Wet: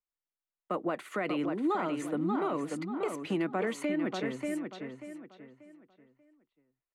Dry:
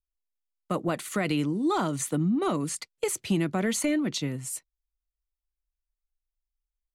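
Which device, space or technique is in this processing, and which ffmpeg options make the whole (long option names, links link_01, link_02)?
DJ mixer with the lows and highs turned down: -filter_complex "[0:a]acrossover=split=250 2700:gain=0.126 1 0.126[link_01][link_02][link_03];[link_01][link_02][link_03]amix=inputs=3:normalize=0,asplit=2[link_04][link_05];[link_05]adelay=587,lowpass=frequency=4100:poles=1,volume=-6dB,asplit=2[link_06][link_07];[link_07]adelay=587,lowpass=frequency=4100:poles=1,volume=0.31,asplit=2[link_08][link_09];[link_09]adelay=587,lowpass=frequency=4100:poles=1,volume=0.31,asplit=2[link_10][link_11];[link_11]adelay=587,lowpass=frequency=4100:poles=1,volume=0.31[link_12];[link_04][link_06][link_08][link_10][link_12]amix=inputs=5:normalize=0,alimiter=limit=-22.5dB:level=0:latency=1:release=107"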